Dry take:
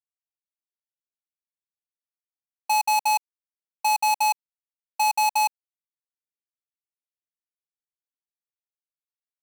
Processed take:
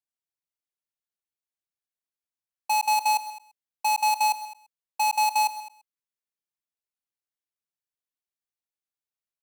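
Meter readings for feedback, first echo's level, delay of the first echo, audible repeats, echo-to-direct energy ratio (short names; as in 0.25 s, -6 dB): no steady repeat, -15.5 dB, 0.13 s, 3, -13.5 dB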